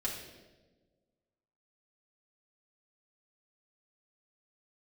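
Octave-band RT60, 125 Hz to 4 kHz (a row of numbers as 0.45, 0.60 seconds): 1.7, 1.7, 1.6, 1.1, 0.95, 0.95 seconds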